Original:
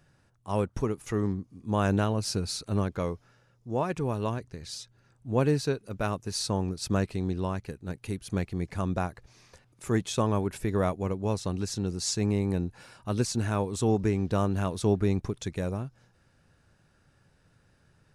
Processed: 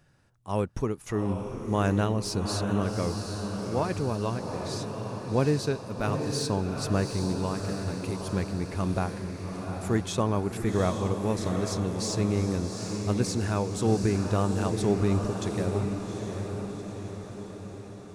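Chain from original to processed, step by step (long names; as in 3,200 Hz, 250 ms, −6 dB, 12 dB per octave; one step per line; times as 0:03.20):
de-essing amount 60%
feedback delay with all-pass diffusion 787 ms, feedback 59%, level −5.5 dB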